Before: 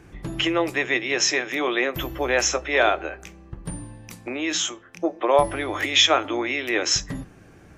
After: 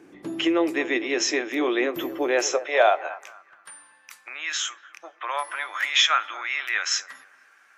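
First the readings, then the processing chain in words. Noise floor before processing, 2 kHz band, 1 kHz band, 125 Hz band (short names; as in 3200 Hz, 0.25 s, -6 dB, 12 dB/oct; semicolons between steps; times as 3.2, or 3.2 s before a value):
-49 dBFS, -1.5 dB, -1.5 dB, under -15 dB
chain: dark delay 0.235 s, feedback 34%, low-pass 1300 Hz, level -14 dB; high-pass sweep 290 Hz -> 1400 Hz, 2.21–3.52; gain -4 dB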